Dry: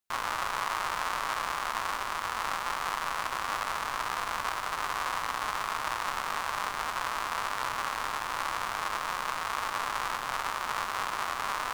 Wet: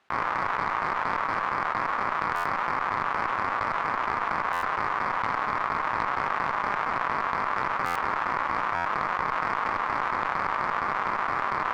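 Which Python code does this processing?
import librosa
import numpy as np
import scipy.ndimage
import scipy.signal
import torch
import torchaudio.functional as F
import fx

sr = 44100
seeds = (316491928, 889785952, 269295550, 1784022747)

p1 = scipy.signal.sosfilt(scipy.signal.butter(2, 1900.0, 'lowpass', fs=sr, output='sos'), x)
p2 = fx.low_shelf(p1, sr, hz=300.0, db=-10.0)
p3 = p2 + fx.echo_single(p2, sr, ms=79, db=-8.0, dry=0)
p4 = fx.step_gate(p3, sr, bpm=129, pattern='.x.x.x.x.x', floor_db=-12.0, edge_ms=4.5)
p5 = scipy.signal.sosfilt(scipy.signal.butter(2, 63.0, 'highpass', fs=sr, output='sos'), p4)
p6 = fx.tube_stage(p5, sr, drive_db=24.0, bias=0.55)
p7 = fx.buffer_glitch(p6, sr, at_s=(2.35, 4.52, 7.85, 8.75), block=512, repeats=8)
p8 = fx.env_flatten(p7, sr, amount_pct=100)
y = F.gain(torch.from_numpy(p8), 6.0).numpy()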